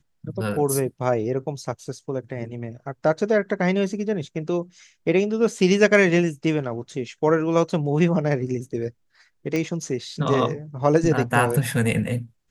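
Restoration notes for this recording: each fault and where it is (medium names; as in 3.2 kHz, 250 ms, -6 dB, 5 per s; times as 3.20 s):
9.56 s: pop -13 dBFS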